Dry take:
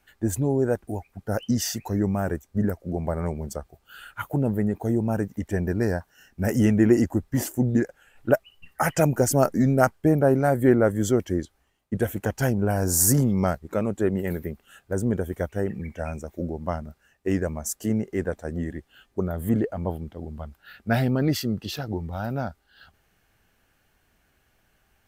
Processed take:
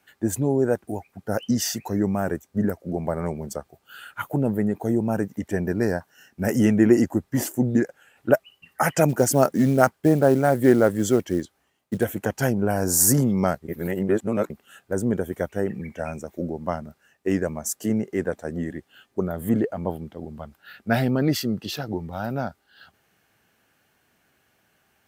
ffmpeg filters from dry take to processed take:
-filter_complex "[0:a]asplit=3[a][b][c];[a]afade=t=out:st=9.08:d=0.02[d];[b]acrusher=bits=7:mode=log:mix=0:aa=0.000001,afade=t=in:st=9.08:d=0.02,afade=t=out:st=12.03:d=0.02[e];[c]afade=t=in:st=12.03:d=0.02[f];[d][e][f]amix=inputs=3:normalize=0,asplit=3[g][h][i];[g]atrim=end=13.682[j];[h]atrim=start=13.678:end=14.502,asetpts=PTS-STARTPTS,areverse[k];[i]atrim=start=14.498[l];[j][k]acrossfade=d=0.004:c1=hsin:c2=hsin[m];[m][l]acrossfade=d=0.004:c1=hsin:c2=hsin,highpass=130,volume=2dB"

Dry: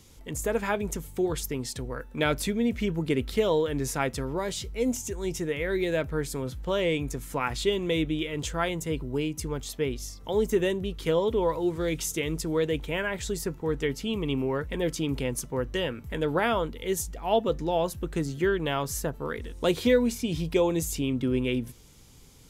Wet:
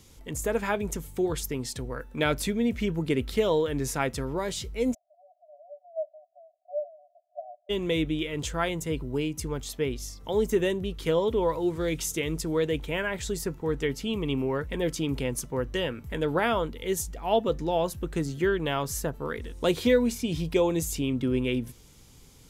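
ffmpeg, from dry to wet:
-filter_complex "[0:a]asplit=3[a][b][c];[a]afade=t=out:st=4.93:d=0.02[d];[b]asuperpass=centerf=660:order=20:qfactor=3.9,afade=t=in:st=4.93:d=0.02,afade=t=out:st=7.69:d=0.02[e];[c]afade=t=in:st=7.69:d=0.02[f];[d][e][f]amix=inputs=3:normalize=0"

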